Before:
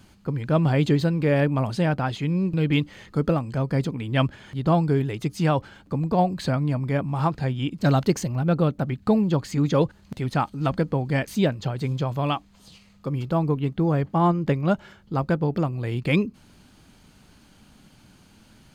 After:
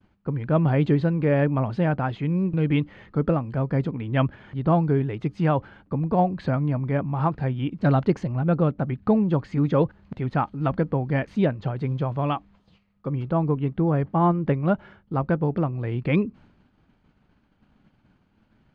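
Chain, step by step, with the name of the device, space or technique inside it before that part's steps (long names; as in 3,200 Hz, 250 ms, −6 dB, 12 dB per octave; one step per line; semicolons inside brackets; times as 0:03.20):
hearing-loss simulation (low-pass filter 2,100 Hz 12 dB per octave; downward expander −46 dBFS)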